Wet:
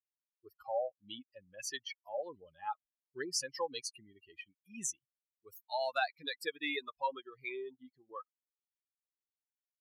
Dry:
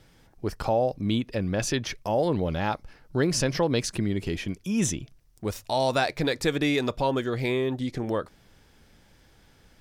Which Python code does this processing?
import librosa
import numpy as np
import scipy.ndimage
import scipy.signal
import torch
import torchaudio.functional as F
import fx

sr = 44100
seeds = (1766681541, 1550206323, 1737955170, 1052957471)

y = fx.bin_expand(x, sr, power=3.0)
y = scipy.signal.sosfilt(scipy.signal.butter(2, 610.0, 'highpass', fs=sr, output='sos'), y)
y = y * librosa.db_to_amplitude(-2.5)